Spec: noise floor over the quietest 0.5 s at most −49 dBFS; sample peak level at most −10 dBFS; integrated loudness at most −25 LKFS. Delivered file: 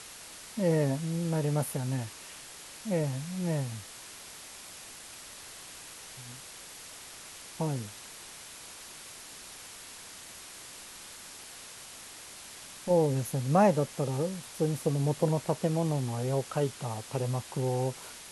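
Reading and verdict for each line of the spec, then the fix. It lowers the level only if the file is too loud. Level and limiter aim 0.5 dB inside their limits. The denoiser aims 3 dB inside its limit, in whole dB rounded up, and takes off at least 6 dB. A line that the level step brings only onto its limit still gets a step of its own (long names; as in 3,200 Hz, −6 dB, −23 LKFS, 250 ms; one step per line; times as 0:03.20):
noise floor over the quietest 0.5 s −47 dBFS: out of spec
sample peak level −12.5 dBFS: in spec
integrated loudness −30.5 LKFS: in spec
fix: broadband denoise 6 dB, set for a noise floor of −47 dBFS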